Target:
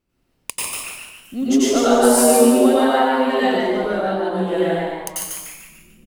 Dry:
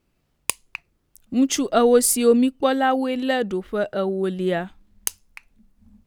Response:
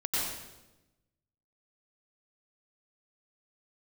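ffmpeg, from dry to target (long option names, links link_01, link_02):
-filter_complex "[0:a]asettb=1/sr,asplit=3[link_01][link_02][link_03];[link_01]atrim=end=3.914[link_04];[link_02]atrim=start=3.91:end=4.31,asetpts=PTS-STARTPTS,afade=type=in:duration=0.004:curve=qsin,afade=type=out:start_time=0.396:duration=0.004:curve=qsin,highshelf=frequency=9700:gain=-8.5[link_05];[link_03]atrim=start=4.306[link_06];[link_04][link_05]acrossfade=duration=0.004:curve1=hsin:curve2=qsin[link_07];[link_07][link_06]acrossfade=duration=0.004:curve1=qsin:curve2=hsin,asplit=6[link_08][link_09][link_10][link_11][link_12][link_13];[link_09]adelay=147,afreqshift=140,volume=-4dB[link_14];[link_10]adelay=294,afreqshift=280,volume=-12dB[link_15];[link_11]adelay=441,afreqshift=420,volume=-19.9dB[link_16];[link_12]adelay=588,afreqshift=560,volume=-27.9dB[link_17];[link_13]adelay=735,afreqshift=700,volume=-35.8dB[link_18];[link_08][link_14][link_15][link_16][link_17][link_18]amix=inputs=6:normalize=0[link_19];[1:a]atrim=start_sample=2205[link_20];[link_19][link_20]afir=irnorm=-1:irlink=0,volume=-5.5dB"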